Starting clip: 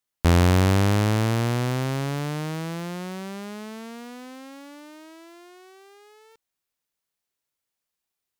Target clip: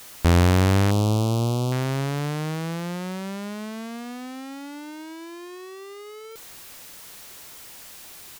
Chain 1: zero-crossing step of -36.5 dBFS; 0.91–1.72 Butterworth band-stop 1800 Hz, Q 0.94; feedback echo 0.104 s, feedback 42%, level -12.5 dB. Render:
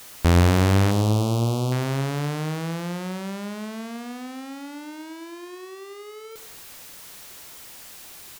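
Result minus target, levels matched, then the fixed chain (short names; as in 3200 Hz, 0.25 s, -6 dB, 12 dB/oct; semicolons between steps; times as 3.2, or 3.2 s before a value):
echo-to-direct +12 dB
zero-crossing step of -36.5 dBFS; 0.91–1.72 Butterworth band-stop 1800 Hz, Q 0.94; feedback echo 0.104 s, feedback 42%, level -24.5 dB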